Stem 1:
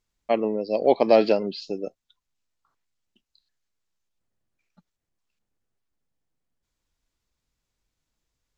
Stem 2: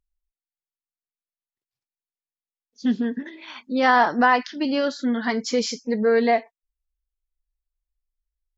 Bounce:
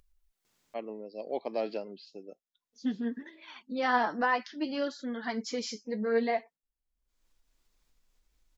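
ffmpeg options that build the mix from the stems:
-filter_complex "[0:a]highpass=170,adelay=450,volume=0.531[s0];[1:a]flanger=delay=1.7:depth=8.5:regen=39:speed=0.59:shape=sinusoidal,volume=0.501,asplit=2[s1][s2];[s2]apad=whole_len=398202[s3];[s0][s3]sidechaingate=range=0.316:threshold=0.00251:ratio=16:detection=peak[s4];[s4][s1]amix=inputs=2:normalize=0,acompressor=mode=upward:threshold=0.00224:ratio=2.5"

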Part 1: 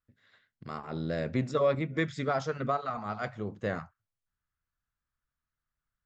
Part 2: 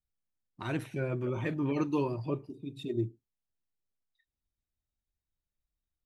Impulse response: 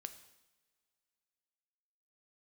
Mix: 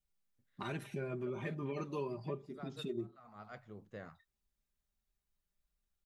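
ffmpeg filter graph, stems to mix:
-filter_complex "[0:a]adelay=300,volume=0.168[s0];[1:a]aecho=1:1:5:0.68,volume=1.06,asplit=2[s1][s2];[s2]apad=whole_len=280273[s3];[s0][s3]sidechaincompress=threshold=0.0126:ratio=8:attack=16:release=437[s4];[s4][s1]amix=inputs=2:normalize=0,acompressor=threshold=0.00891:ratio=2.5"

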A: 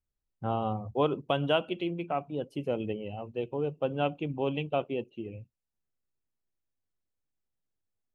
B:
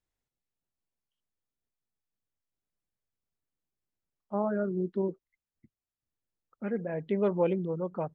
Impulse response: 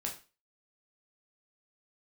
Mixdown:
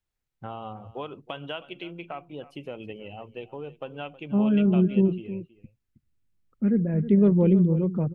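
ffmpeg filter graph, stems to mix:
-filter_complex "[0:a]equalizer=f=2100:t=o:w=2.4:g=9,acompressor=threshold=0.0282:ratio=3,volume=0.668,asplit=2[s0][s1];[s1]volume=0.133[s2];[1:a]asubboost=boost=11:cutoff=230,volume=0.841,asplit=2[s3][s4];[s4]volume=0.224[s5];[s2][s5]amix=inputs=2:normalize=0,aecho=0:1:318:1[s6];[s0][s3][s6]amix=inputs=3:normalize=0"

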